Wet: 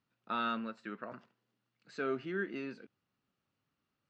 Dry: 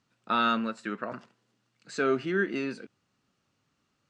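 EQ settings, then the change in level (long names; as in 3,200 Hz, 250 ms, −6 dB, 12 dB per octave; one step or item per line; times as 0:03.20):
low-pass filter 4,400 Hz 12 dB per octave
−9.0 dB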